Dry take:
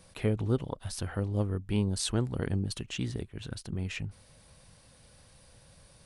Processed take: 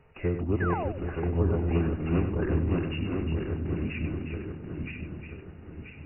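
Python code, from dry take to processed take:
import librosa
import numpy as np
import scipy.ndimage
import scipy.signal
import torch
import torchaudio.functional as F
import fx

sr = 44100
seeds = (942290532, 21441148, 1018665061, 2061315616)

p1 = fx.reverse_delay_fb(x, sr, ms=492, feedback_pct=65, wet_db=-1.5)
p2 = fx.pitch_keep_formants(p1, sr, semitones=-3.5)
p3 = p2 + fx.echo_single(p2, sr, ms=358, db=-8.0, dry=0)
p4 = fx.spec_paint(p3, sr, seeds[0], shape='fall', start_s=0.6, length_s=0.29, low_hz=480.0, high_hz=1800.0, level_db=-33.0)
p5 = fx.brickwall_lowpass(p4, sr, high_hz=2900.0)
y = p5 + 10.0 ** (-9.0 / 20.0) * np.pad(p5, (int(98 * sr / 1000.0), 0))[:len(p5)]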